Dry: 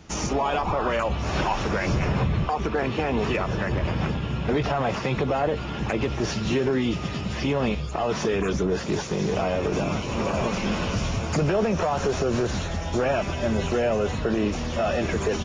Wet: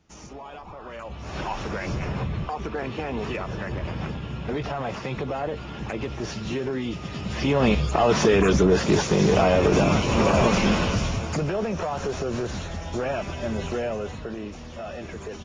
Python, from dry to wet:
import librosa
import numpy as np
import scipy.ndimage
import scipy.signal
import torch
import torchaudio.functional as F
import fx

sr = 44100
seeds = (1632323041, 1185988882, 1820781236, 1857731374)

y = fx.gain(x, sr, db=fx.line((0.8, -16.0), (1.51, -5.0), (7.04, -5.0), (7.74, 6.0), (10.6, 6.0), (11.49, -4.0), (13.77, -4.0), (14.45, -11.0)))